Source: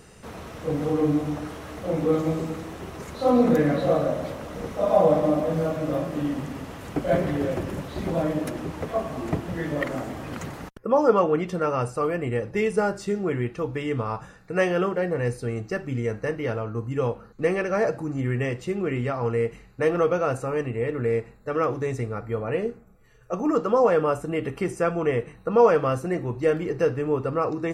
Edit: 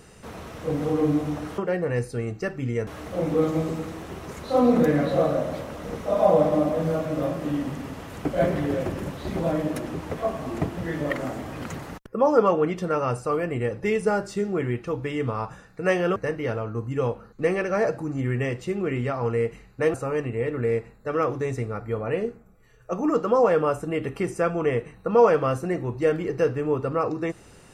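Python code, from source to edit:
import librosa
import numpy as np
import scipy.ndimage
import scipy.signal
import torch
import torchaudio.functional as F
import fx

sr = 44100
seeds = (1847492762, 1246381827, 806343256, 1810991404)

y = fx.edit(x, sr, fx.move(start_s=14.87, length_s=1.29, to_s=1.58),
    fx.cut(start_s=19.94, length_s=0.41), tone=tone)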